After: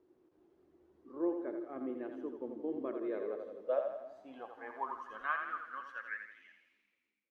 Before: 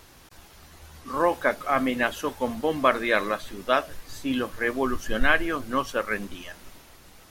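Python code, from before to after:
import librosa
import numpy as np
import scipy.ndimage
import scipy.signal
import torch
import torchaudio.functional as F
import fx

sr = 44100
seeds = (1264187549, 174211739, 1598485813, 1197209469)

y = fx.fade_out_tail(x, sr, length_s=2.33)
y = fx.echo_split(y, sr, split_hz=330.0, low_ms=322, high_ms=84, feedback_pct=52, wet_db=-6.5)
y = fx.filter_sweep_bandpass(y, sr, from_hz=350.0, to_hz=2300.0, start_s=2.88, end_s=6.69, q=7.3)
y = F.gain(torch.from_numpy(y), -2.0).numpy()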